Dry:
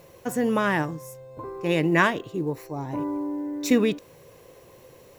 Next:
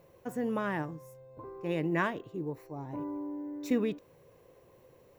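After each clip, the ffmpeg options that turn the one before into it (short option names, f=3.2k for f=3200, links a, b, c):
-af "equalizer=f=7.2k:t=o:w=3:g=-8.5,volume=-8.5dB"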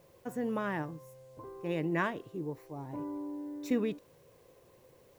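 -af "acrusher=bits=10:mix=0:aa=0.000001,volume=-1.5dB"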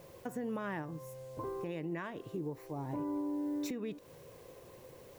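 -af "acompressor=threshold=-38dB:ratio=6,alimiter=level_in=12.5dB:limit=-24dB:level=0:latency=1:release=428,volume=-12.5dB,volume=7dB"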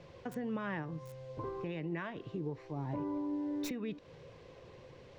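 -filter_complex "[0:a]acrossover=split=210|1700|5100[a][b][c][d];[b]flanger=delay=0.3:depth=2.3:regen=63:speed=1.8:shape=triangular[e];[d]acrusher=bits=5:dc=4:mix=0:aa=0.000001[f];[a][e][c][f]amix=inputs=4:normalize=0,volume=3.5dB"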